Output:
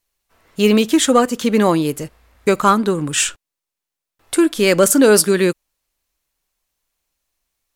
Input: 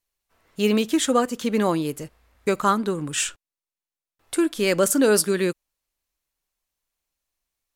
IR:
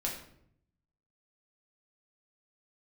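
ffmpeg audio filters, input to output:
-af "acontrast=34,volume=2dB"

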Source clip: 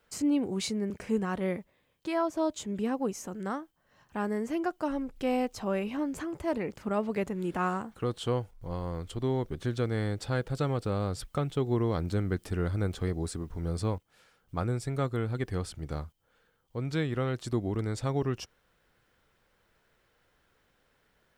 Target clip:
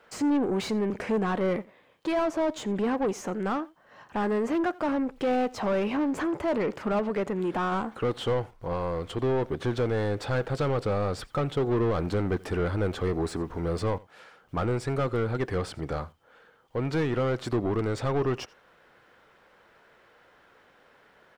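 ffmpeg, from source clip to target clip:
-filter_complex "[0:a]asettb=1/sr,asplit=3[a][b][c];[a]atrim=end=6.994[d];[b]atrim=start=6.99:end=7.72,asetpts=PTS-STARTPTS,afade=t=in:d=0.004:c=qsin,afade=t=out:st=0.726:d=0.004:c=qsin,acompressor=threshold=-33dB:ratio=2[e];[c]atrim=start=7.716[f];[d][e]acrossfade=d=0.004:c1=hsin:c2=qsin[g];[g][f]acrossfade=d=0.004:c1=qsin:c2=hsin,asplit=2[h][i];[i]highpass=f=720:p=1,volume=24dB,asoftclip=type=tanh:threshold=-17.5dB[j];[h][j]amix=inputs=2:normalize=0,lowpass=f=1.1k:p=1,volume=-6dB,asplit=2[k][l];[l]aecho=0:1:86:0.0708[m];[k][m]amix=inputs=2:normalize=0"

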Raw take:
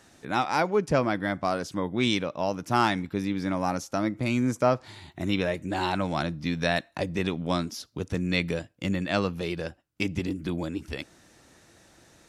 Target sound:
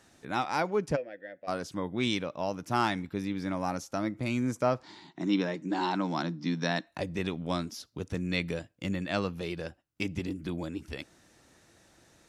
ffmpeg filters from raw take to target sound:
-filter_complex "[0:a]asplit=3[a][b][c];[a]afade=t=out:st=0.95:d=0.02[d];[b]asplit=3[e][f][g];[e]bandpass=f=530:t=q:w=8,volume=0dB[h];[f]bandpass=f=1.84k:t=q:w=8,volume=-6dB[i];[g]bandpass=f=2.48k:t=q:w=8,volume=-9dB[j];[h][i][j]amix=inputs=3:normalize=0,afade=t=in:st=0.95:d=0.02,afade=t=out:st=1.47:d=0.02[k];[c]afade=t=in:st=1.47:d=0.02[l];[d][k][l]amix=inputs=3:normalize=0,asettb=1/sr,asplit=3[m][n][o];[m]atrim=end=4.834[p];[n]atrim=start=4.83:end=6.87,asetpts=PTS-STARTPTS,afade=t=in:d=0.004:c=qsin,afade=t=out:st=2.036:d=0.004:c=qsin,highpass=f=170:w=0.5412,highpass=f=170:w=1.3066,equalizer=f=170:t=q:w=4:g=5,equalizer=f=300:t=q:w=4:g=8,equalizer=f=600:t=q:w=4:g=-4,equalizer=f=950:t=q:w=4:g=5,equalizer=f=2.5k:t=q:w=4:g=-4,equalizer=f=5.3k:t=q:w=4:g=6,lowpass=f=7.1k:w=0.5412,lowpass=f=7.1k:w=1.3066[q];[o]atrim=start=6.866[r];[p][q]acrossfade=d=0.004:c1=hsin:c2=qsin[s];[s][r]acrossfade=d=0.004:c1=qsin:c2=hsin,volume=-4.5dB"

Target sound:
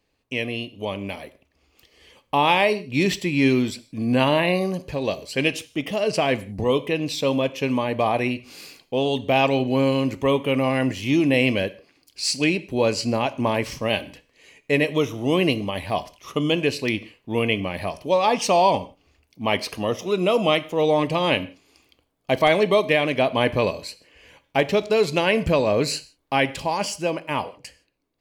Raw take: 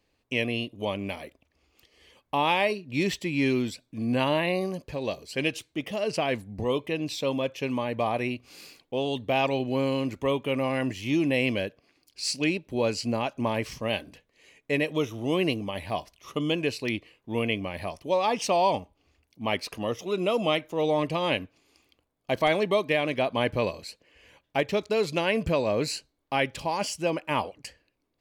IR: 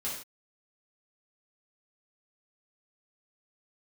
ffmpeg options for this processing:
-filter_complex "[0:a]dynaudnorm=f=140:g=21:m=5dB,asplit=2[a][b];[1:a]atrim=start_sample=2205[c];[b][c]afir=irnorm=-1:irlink=0,volume=-15.5dB[d];[a][d]amix=inputs=2:normalize=0"

